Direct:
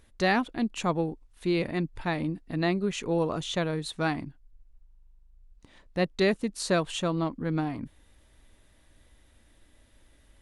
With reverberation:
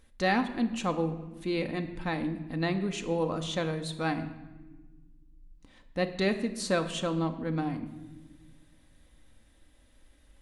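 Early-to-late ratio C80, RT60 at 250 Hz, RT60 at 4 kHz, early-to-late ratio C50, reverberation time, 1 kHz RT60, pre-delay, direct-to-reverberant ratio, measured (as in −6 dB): 13.5 dB, 2.2 s, 0.85 s, 11.5 dB, 1.3 s, 1.1 s, 4 ms, 6.0 dB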